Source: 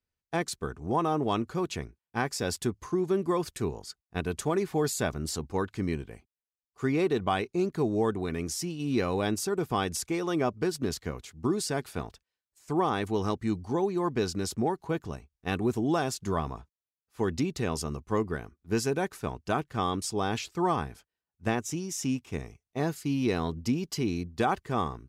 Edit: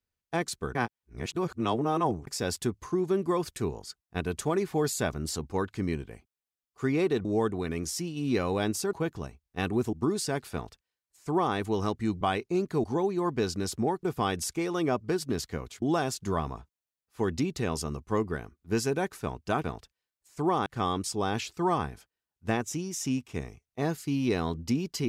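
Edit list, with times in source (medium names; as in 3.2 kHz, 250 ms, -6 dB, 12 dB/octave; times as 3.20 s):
0.75–2.27 s: reverse
7.25–7.88 s: move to 13.63 s
9.56–11.35 s: swap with 14.82–15.82 s
11.95–12.97 s: copy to 19.64 s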